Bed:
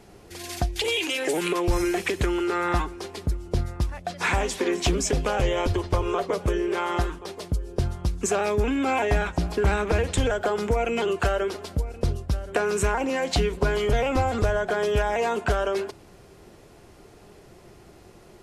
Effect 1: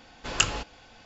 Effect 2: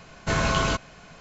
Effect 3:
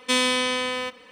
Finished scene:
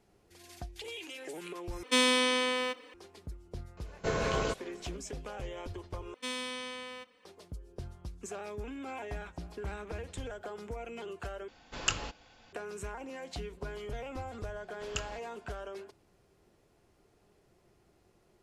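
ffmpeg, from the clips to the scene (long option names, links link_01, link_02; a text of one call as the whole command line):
ffmpeg -i bed.wav -i cue0.wav -i cue1.wav -i cue2.wav -filter_complex "[3:a]asplit=2[link_01][link_02];[1:a]asplit=2[link_03][link_04];[0:a]volume=-17.5dB[link_05];[link_01]lowshelf=frequency=230:width_type=q:width=3:gain=-6.5[link_06];[2:a]equalizer=frequency=450:width_type=o:width=0.63:gain=14.5[link_07];[link_05]asplit=4[link_08][link_09][link_10][link_11];[link_08]atrim=end=1.834[link_12];[link_06]atrim=end=1.11,asetpts=PTS-STARTPTS,volume=-4.5dB[link_13];[link_09]atrim=start=2.936:end=6.144[link_14];[link_02]atrim=end=1.11,asetpts=PTS-STARTPTS,volume=-16dB[link_15];[link_10]atrim=start=7.246:end=11.484[link_16];[link_03]atrim=end=1.05,asetpts=PTS-STARTPTS,volume=-7dB[link_17];[link_11]atrim=start=12.526[link_18];[link_07]atrim=end=1.2,asetpts=PTS-STARTPTS,volume=-11dB,afade=type=in:duration=0.004:curve=hsin,afade=type=out:start_time=1.196:duration=0.004:curve=hsin,adelay=166257S[link_19];[link_04]atrim=end=1.05,asetpts=PTS-STARTPTS,volume=-15dB,afade=type=in:duration=0.004:curve=hsin,afade=type=out:start_time=1.046:duration=0.004:curve=hsin,adelay=14560[link_20];[link_12][link_13]acrossfade=duration=0.004:curve1=hsin:curve2=hsin[link_21];[link_21][link_14]acrossfade=duration=0.004:curve1=hsin:curve2=hsin[link_22];[link_22][link_15]acrossfade=duration=0.004:curve1=hsin:curve2=hsin[link_23];[link_23][link_16]acrossfade=duration=0.004:curve1=hsin:curve2=hsin[link_24];[link_24][link_17]acrossfade=duration=0.004:curve1=hsin:curve2=hsin[link_25];[link_25][link_18]acrossfade=duration=0.004:curve1=hsin:curve2=hsin[link_26];[link_26][link_19][link_20]amix=inputs=3:normalize=0" out.wav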